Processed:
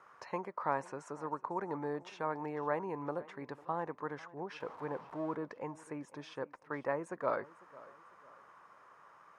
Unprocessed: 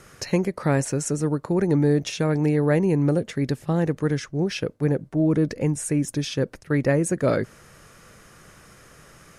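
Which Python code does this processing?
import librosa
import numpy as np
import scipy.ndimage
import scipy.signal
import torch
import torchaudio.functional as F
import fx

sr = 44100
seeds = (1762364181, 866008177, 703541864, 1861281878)

y = fx.zero_step(x, sr, step_db=-34.0, at=(4.6, 5.35))
y = fx.bandpass_q(y, sr, hz=1000.0, q=4.6)
y = fx.echo_feedback(y, sr, ms=499, feedback_pct=38, wet_db=-20.5)
y = y * librosa.db_to_amplitude(2.5)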